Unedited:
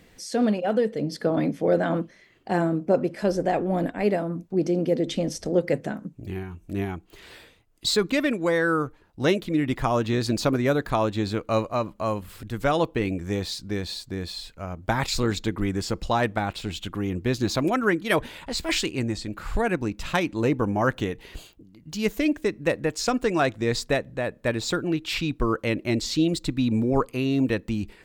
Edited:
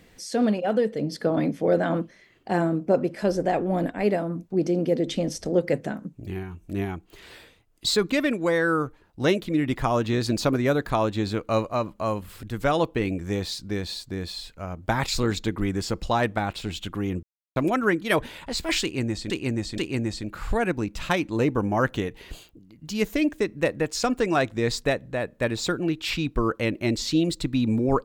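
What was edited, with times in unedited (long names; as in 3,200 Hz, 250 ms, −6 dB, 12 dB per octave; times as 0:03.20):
0:17.23–0:17.56: silence
0:18.82–0:19.30: repeat, 3 plays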